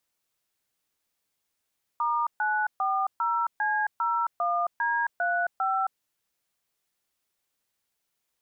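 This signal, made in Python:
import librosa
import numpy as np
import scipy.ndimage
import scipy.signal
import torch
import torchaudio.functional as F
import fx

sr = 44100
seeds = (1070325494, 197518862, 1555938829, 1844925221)

y = fx.dtmf(sr, digits='*940C01D35', tone_ms=268, gap_ms=132, level_db=-26.0)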